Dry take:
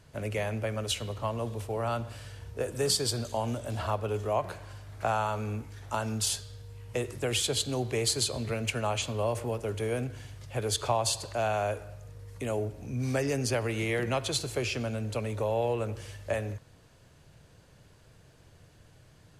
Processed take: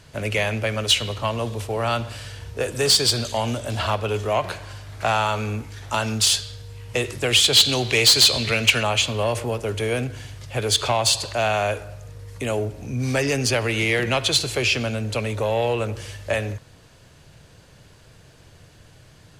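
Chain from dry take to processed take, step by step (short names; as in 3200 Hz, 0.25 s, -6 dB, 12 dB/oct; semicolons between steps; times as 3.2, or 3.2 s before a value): bell 3800 Hz +5.5 dB 2.5 oct, from 7.53 s +12.5 dB, from 8.83 s +3.5 dB; soft clip -19 dBFS, distortion -12 dB; dynamic EQ 3000 Hz, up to +5 dB, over -44 dBFS, Q 0.89; gain +7 dB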